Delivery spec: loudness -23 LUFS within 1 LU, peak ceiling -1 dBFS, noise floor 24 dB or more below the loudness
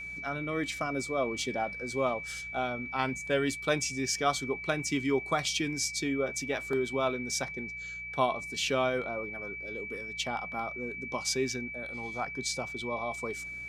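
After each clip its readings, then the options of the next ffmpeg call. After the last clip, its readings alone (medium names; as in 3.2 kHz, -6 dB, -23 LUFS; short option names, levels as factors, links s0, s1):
hum 60 Hz; highest harmonic 180 Hz; hum level -52 dBFS; steady tone 2.3 kHz; tone level -38 dBFS; loudness -32.0 LUFS; peak level -13.0 dBFS; loudness target -23.0 LUFS
-> -af "bandreject=f=60:t=h:w=4,bandreject=f=120:t=h:w=4,bandreject=f=180:t=h:w=4"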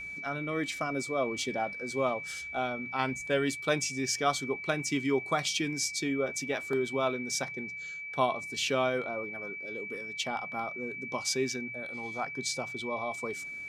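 hum not found; steady tone 2.3 kHz; tone level -38 dBFS
-> -af "bandreject=f=2300:w=30"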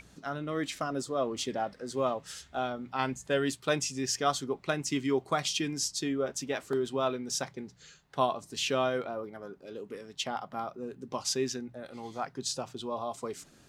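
steady tone not found; loudness -33.0 LUFS; peak level -13.0 dBFS; loudness target -23.0 LUFS
-> -af "volume=3.16"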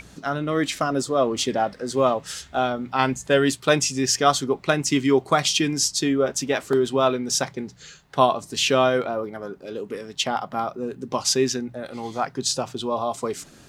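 loudness -23.0 LUFS; peak level -3.0 dBFS; noise floor -49 dBFS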